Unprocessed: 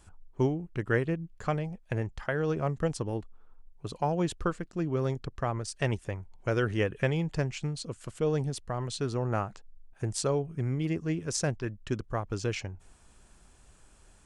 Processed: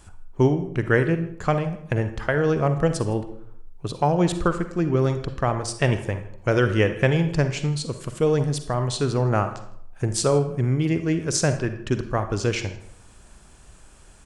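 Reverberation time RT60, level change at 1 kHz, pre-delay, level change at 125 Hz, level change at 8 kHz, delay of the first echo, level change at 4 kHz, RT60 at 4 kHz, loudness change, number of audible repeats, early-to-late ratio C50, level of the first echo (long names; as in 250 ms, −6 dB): 0.70 s, +8.5 dB, 40 ms, +8.5 dB, +8.5 dB, 160 ms, +8.5 dB, 0.45 s, +8.5 dB, 1, 9.5 dB, −23.0 dB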